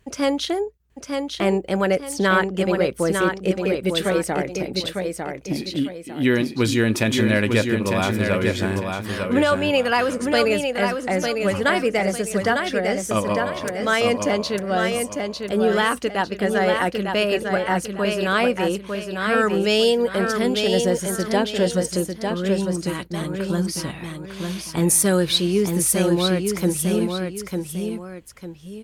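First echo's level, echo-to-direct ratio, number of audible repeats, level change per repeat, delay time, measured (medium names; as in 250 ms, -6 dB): -5.0 dB, -4.5 dB, 2, -9.0 dB, 901 ms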